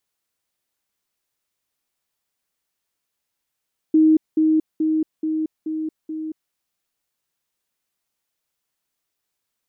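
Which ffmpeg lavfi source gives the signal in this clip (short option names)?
-f lavfi -i "aevalsrc='pow(10,(-10.5-3*floor(t/0.43))/20)*sin(2*PI*314*t)*clip(min(mod(t,0.43),0.23-mod(t,0.43))/0.005,0,1)':d=2.58:s=44100"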